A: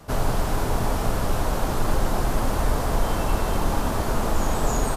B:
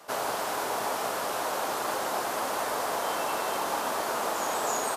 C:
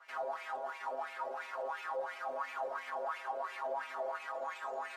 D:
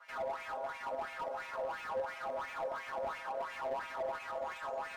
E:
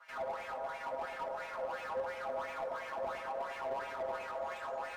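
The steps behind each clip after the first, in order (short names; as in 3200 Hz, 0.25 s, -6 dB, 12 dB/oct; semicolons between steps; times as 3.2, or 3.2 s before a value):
HPF 530 Hz 12 dB/oct
metallic resonator 130 Hz, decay 0.24 s, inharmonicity 0.002; limiter -36.5 dBFS, peak gain reduction 9.5 dB; wah 2.9 Hz 540–2400 Hz, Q 4.8; gain +14 dB
notch comb 380 Hz; slew limiter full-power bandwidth 11 Hz; gain +2.5 dB
flange 0.79 Hz, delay 9.3 ms, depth 7.2 ms, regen -74%; on a send: darkening echo 0.104 s, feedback 73%, low-pass 920 Hz, level -6.5 dB; on the sum: gain +3.5 dB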